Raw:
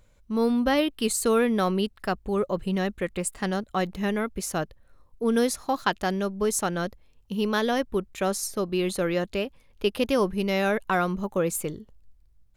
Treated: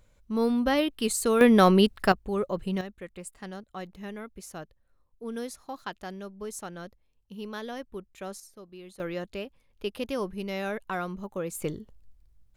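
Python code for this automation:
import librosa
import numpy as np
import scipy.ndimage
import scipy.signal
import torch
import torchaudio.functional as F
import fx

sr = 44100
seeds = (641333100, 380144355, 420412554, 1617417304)

y = fx.gain(x, sr, db=fx.steps((0.0, -2.0), (1.41, 6.0), (2.12, -3.0), (2.81, -12.5), (8.4, -20.0), (9.0, -8.0), (11.62, 0.0)))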